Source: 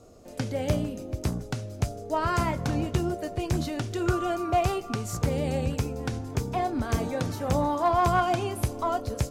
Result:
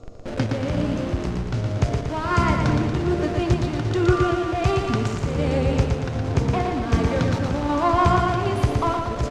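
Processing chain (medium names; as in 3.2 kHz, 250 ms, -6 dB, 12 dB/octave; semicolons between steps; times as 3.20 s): dynamic bell 700 Hz, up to -6 dB, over -38 dBFS, Q 1.9; square tremolo 1.3 Hz, depth 60%, duty 60%; in parallel at -7 dB: Schmitt trigger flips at -43 dBFS; on the sum: distance through air 100 m; on a send: feedback delay 117 ms, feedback 55%, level -4.5 dB; on the sum: trim +5.5 dB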